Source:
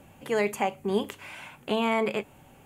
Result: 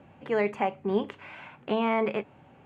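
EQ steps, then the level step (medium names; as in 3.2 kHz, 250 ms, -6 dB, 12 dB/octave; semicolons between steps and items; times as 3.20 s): high-pass 84 Hz; low-pass 2.4 kHz 12 dB/octave; 0.0 dB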